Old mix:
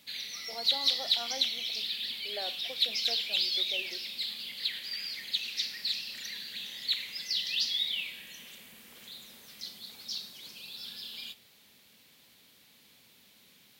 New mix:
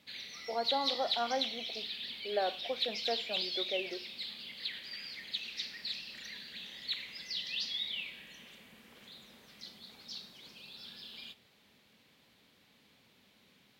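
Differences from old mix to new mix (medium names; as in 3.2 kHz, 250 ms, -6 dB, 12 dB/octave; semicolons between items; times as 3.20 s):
speech +9.0 dB; master: add low-pass 2 kHz 6 dB/octave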